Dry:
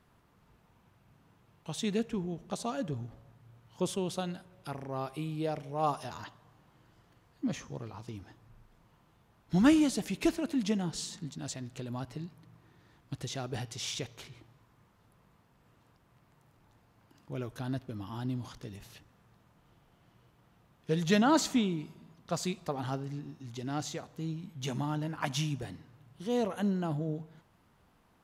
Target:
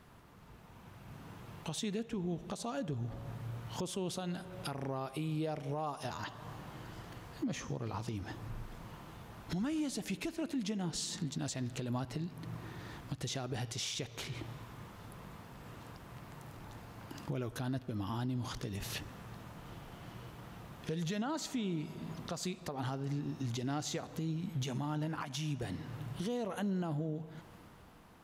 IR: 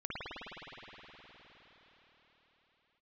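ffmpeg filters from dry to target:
-filter_complex "[0:a]acompressor=threshold=-51dB:ratio=3,asplit=2[a][b];[1:a]atrim=start_sample=2205[c];[b][c]afir=irnorm=-1:irlink=0,volume=-26.5dB[d];[a][d]amix=inputs=2:normalize=0,alimiter=level_in=19.5dB:limit=-24dB:level=0:latency=1:release=207,volume=-19.5dB,dynaudnorm=f=120:g=17:m=8dB,volume=7dB"

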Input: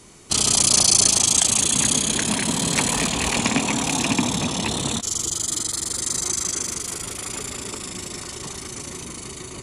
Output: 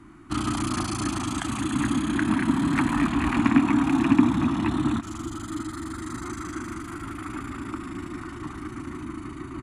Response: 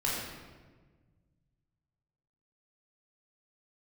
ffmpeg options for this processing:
-af "firequalizer=gain_entry='entry(110,0);entry(180,-5);entry(310,10);entry(450,-24);entry(690,-9);entry(1300,4);entry(2200,-8);entry(3300,-16);entry(5600,-26);entry(14000,-19)':delay=0.05:min_phase=1,aecho=1:1:488|976|1464|1952:0.0891|0.0481|0.026|0.014,volume=1.5dB"

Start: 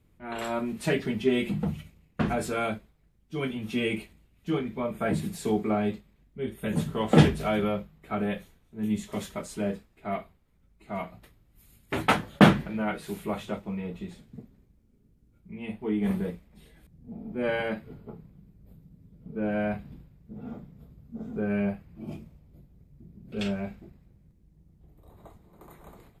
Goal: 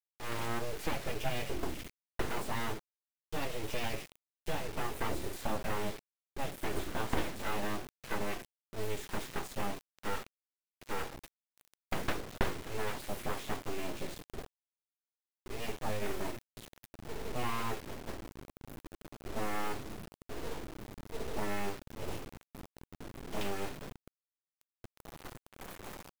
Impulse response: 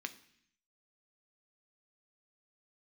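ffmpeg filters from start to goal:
-filter_complex "[0:a]acrossover=split=780|2800[a][b][c];[a]acompressor=threshold=-34dB:ratio=4[d];[b]acompressor=threshold=-44dB:ratio=4[e];[c]acompressor=threshold=-57dB:ratio=4[f];[d][e][f]amix=inputs=3:normalize=0,aeval=exprs='abs(val(0))':c=same,acrusher=bits=5:dc=4:mix=0:aa=0.000001,volume=2.5dB"

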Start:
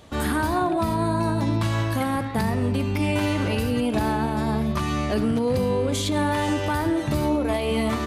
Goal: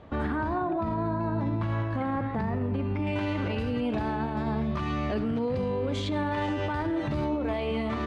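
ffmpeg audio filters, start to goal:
-af "asetnsamples=n=441:p=0,asendcmd='3.07 lowpass f 3200',lowpass=1.8k,alimiter=limit=-21.5dB:level=0:latency=1:release=75"

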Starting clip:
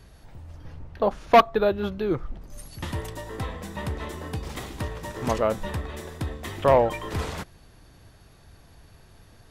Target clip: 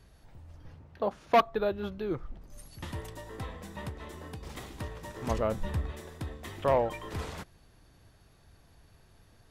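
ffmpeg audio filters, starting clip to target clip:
-filter_complex "[0:a]asettb=1/sr,asplit=3[a][b][c];[a]atrim=end=0.744[d];[b]atrim=start=0.74:end=1.41,asetpts=PTS-STARTPTS,afade=t=in:d=0.004:c=qsin,afade=t=out:st=0.666:d=0.004:c=qsin,highpass=80[e];[c]atrim=start=1.406[f];[d][e]acrossfade=d=0.004:c1=hsin:c2=qsin[g];[g][f]acrossfade=d=0.004:c1=qsin:c2=hsin,asettb=1/sr,asplit=3[h][i][j];[h]atrim=end=3.894[k];[i]atrim=start=3.89:end=4.43,asetpts=PTS-STARTPTS,afade=t=in:d=0.004:c=qsin,afade=t=out:st=0.536:d=0.004:c=qsin,acompressor=threshold=-31dB:ratio=6[l];[j]atrim=start=4.426[m];[k][l]acrossfade=d=0.004:c1=hsin:c2=qsin[n];[n][m]acrossfade=d=0.004:c1=qsin:c2=hsin,asettb=1/sr,asplit=3[o][p][q];[o]atrim=end=5.304[r];[p]atrim=start=5.3:end=5.92,asetpts=PTS-STARTPTS,afade=t=in:d=0.004:c=qsin,afade=t=out:st=0.616:d=0.004:c=qsin,lowshelf=f=190:g=9[s];[q]atrim=start=5.916[t];[r][s]acrossfade=d=0.004:c1=hsin:c2=qsin[u];[u][t]acrossfade=d=0.004:c1=qsin:c2=hsin,volume=-7.5dB"

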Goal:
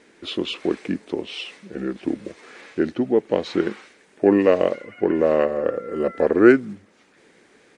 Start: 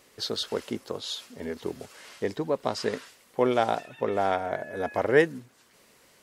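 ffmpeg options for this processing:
-af "asetrate=35280,aresample=44100,aresample=22050,aresample=44100,equalizer=f=250:t=o:w=1:g=11,equalizer=f=500:t=o:w=1:g=10,equalizer=f=2k:t=o:w=1:g=11,volume=-3.5dB"

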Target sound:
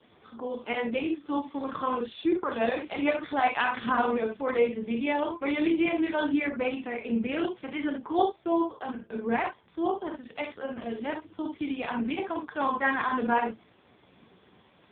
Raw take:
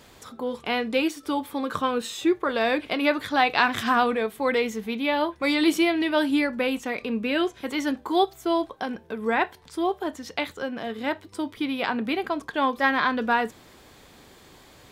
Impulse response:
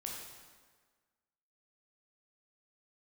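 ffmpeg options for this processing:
-filter_complex "[1:a]atrim=start_sample=2205,atrim=end_sample=3528[a];[0:a][a]afir=irnorm=-1:irlink=0" -ar 8000 -c:a libopencore_amrnb -b:a 4750

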